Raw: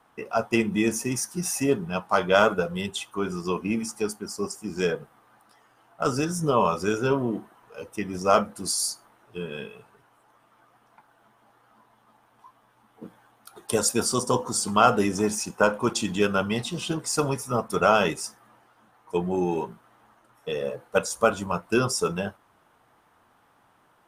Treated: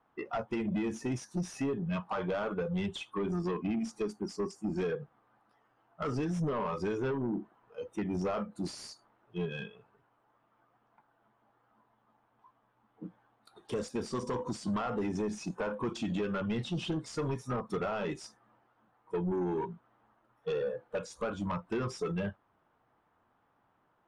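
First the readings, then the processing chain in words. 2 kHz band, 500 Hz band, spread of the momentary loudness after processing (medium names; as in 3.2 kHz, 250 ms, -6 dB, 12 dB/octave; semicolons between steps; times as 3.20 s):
-13.5 dB, -9.5 dB, 9 LU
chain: spectral noise reduction 13 dB; in parallel at +1 dB: peak limiter -14.5 dBFS, peak gain reduction 9 dB; on the sum: compression 10:1, threshold -22 dBFS, peak gain reduction 13.5 dB; saturation -25 dBFS, distortion -10 dB; tape spacing loss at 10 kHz 24 dB; trim -1.5 dB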